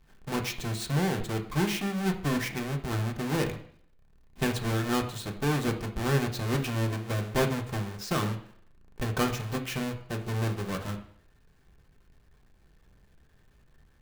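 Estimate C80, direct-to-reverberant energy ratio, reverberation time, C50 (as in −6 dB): 14.5 dB, 2.0 dB, 0.60 s, 11.5 dB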